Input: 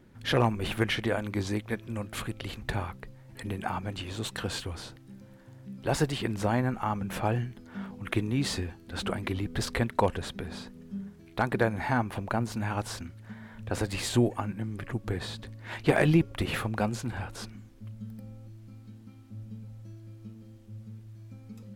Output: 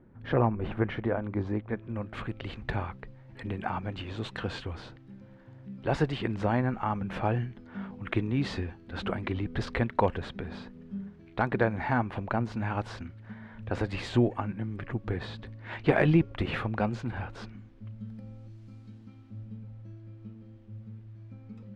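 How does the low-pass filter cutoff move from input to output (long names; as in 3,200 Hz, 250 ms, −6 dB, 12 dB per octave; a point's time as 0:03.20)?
0:01.58 1,300 Hz
0:02.52 3,000 Hz
0:17.92 3,000 Hz
0:18.72 6,500 Hz
0:19.59 2,700 Hz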